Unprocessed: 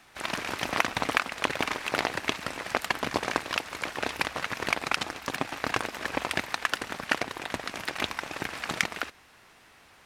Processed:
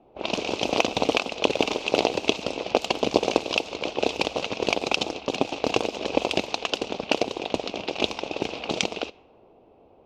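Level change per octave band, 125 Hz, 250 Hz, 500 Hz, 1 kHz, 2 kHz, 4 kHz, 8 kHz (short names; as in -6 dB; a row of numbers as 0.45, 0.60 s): +3.0, +8.5, +10.5, +2.0, -1.5, +6.0, +1.5 dB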